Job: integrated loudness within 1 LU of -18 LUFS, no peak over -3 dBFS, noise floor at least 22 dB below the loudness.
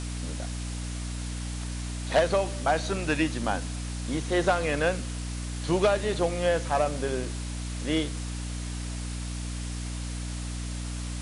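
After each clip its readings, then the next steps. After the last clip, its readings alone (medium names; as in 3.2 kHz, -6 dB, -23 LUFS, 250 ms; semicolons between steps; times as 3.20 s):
hum 60 Hz; highest harmonic 300 Hz; hum level -31 dBFS; noise floor -34 dBFS; noise floor target -52 dBFS; loudness -29.5 LUFS; peak level -13.0 dBFS; loudness target -18.0 LUFS
-> hum notches 60/120/180/240/300 Hz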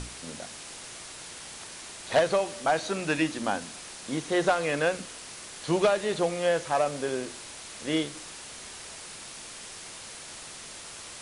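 hum not found; noise floor -43 dBFS; noise floor target -53 dBFS
-> noise print and reduce 10 dB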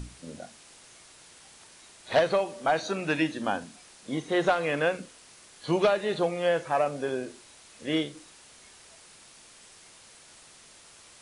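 noise floor -53 dBFS; loudness -28.0 LUFS; peak level -13.5 dBFS; loudness target -18.0 LUFS
-> trim +10 dB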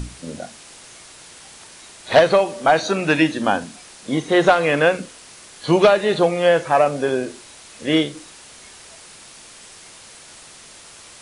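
loudness -18.0 LUFS; peak level -3.5 dBFS; noise floor -43 dBFS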